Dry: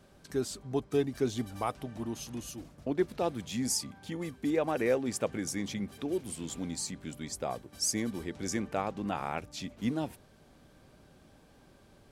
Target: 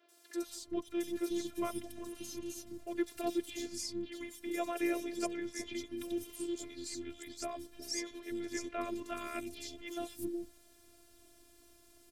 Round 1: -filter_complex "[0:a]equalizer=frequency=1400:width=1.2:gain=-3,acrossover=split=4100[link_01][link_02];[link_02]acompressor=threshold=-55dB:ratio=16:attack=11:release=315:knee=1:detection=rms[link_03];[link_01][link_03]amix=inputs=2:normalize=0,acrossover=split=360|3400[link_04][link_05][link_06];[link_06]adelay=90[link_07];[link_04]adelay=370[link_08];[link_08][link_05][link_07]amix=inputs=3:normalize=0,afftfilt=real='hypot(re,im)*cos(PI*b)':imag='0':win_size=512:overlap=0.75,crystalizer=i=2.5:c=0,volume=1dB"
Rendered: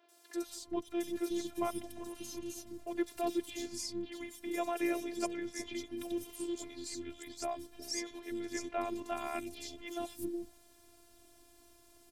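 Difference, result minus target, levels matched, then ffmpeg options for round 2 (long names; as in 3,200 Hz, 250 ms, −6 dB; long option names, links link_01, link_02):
1,000 Hz band +2.5 dB
-filter_complex "[0:a]asuperstop=centerf=840:order=20:qfactor=2.4,equalizer=frequency=1400:width=1.2:gain=-3,acrossover=split=4100[link_01][link_02];[link_02]acompressor=threshold=-55dB:ratio=16:attack=11:release=315:knee=1:detection=rms[link_03];[link_01][link_03]amix=inputs=2:normalize=0,acrossover=split=360|3400[link_04][link_05][link_06];[link_06]adelay=90[link_07];[link_04]adelay=370[link_08];[link_08][link_05][link_07]amix=inputs=3:normalize=0,afftfilt=real='hypot(re,im)*cos(PI*b)':imag='0':win_size=512:overlap=0.75,crystalizer=i=2.5:c=0,volume=1dB"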